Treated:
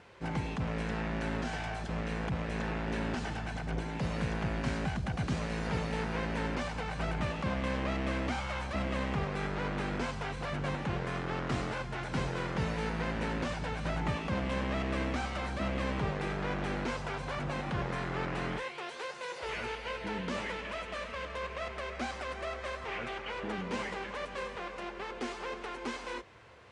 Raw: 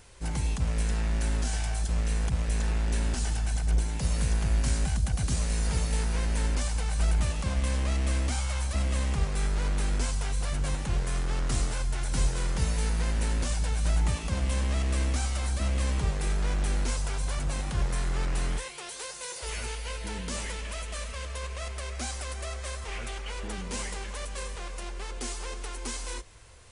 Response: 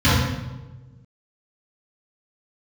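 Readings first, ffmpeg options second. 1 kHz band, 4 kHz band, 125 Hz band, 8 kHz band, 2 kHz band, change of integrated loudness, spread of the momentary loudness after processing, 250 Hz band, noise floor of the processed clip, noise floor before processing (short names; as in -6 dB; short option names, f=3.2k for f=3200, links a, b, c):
+3.0 dB, -4.5 dB, -7.0 dB, -16.5 dB, +1.5 dB, -5.0 dB, 5 LU, +2.0 dB, -44 dBFS, -39 dBFS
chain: -af "highpass=150,lowpass=2.5k,volume=3dB"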